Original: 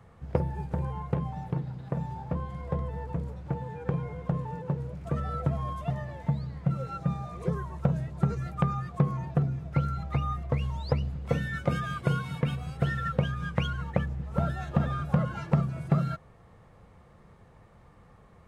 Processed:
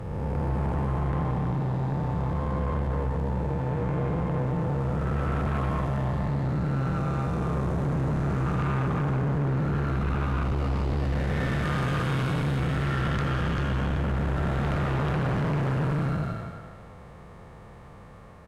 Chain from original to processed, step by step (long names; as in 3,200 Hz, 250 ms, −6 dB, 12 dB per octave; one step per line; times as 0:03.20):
spectrum smeared in time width 587 ms
far-end echo of a speakerphone 240 ms, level −6 dB
harmonic generator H 5 −8 dB, 6 −11 dB, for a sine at −22 dBFS
level +1 dB